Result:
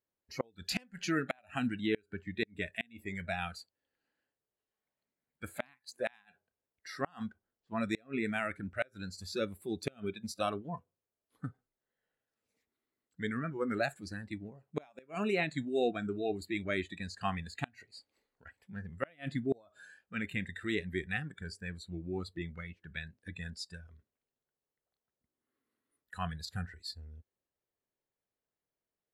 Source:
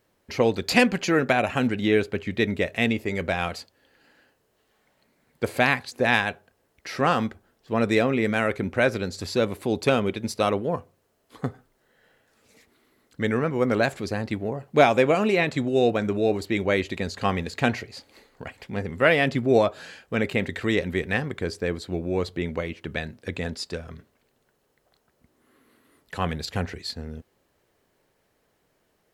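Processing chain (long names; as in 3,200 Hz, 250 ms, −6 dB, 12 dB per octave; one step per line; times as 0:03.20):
tape wow and flutter 26 cents
noise reduction from a noise print of the clip's start 17 dB
gate with flip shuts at −10 dBFS, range −32 dB
level −9 dB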